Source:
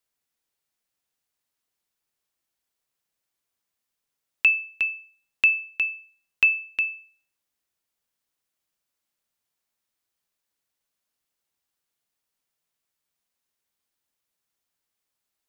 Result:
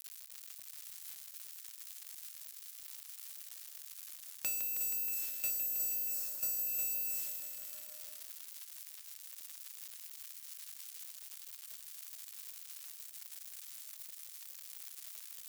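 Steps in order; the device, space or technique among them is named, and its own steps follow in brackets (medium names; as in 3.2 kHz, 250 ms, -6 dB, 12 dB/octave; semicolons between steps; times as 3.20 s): budget class-D amplifier (dead-time distortion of 0.17 ms; zero-crossing glitches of -17.5 dBFS); 5.50–6.67 s: high-order bell 2.7 kHz -9 dB 1.1 oct; bit-crushed delay 159 ms, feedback 80%, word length 8-bit, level -7.5 dB; trim -8.5 dB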